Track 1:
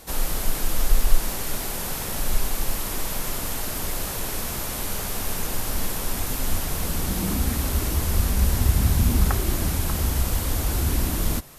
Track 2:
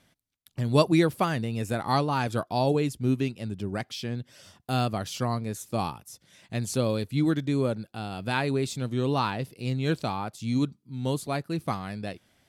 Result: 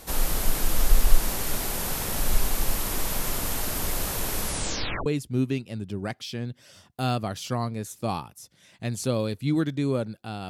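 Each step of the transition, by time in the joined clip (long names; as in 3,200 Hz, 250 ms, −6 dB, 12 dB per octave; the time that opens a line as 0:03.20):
track 1
0:04.40: tape stop 0.66 s
0:05.06: continue with track 2 from 0:02.76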